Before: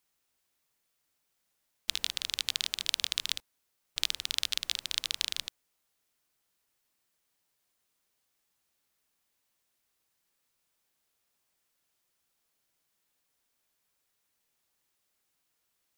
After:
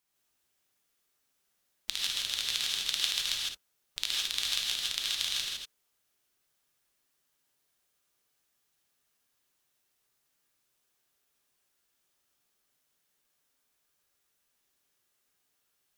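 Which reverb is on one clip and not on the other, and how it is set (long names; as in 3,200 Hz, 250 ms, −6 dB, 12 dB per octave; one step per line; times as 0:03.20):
reverb whose tail is shaped and stops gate 180 ms rising, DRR −3.5 dB
level −3.5 dB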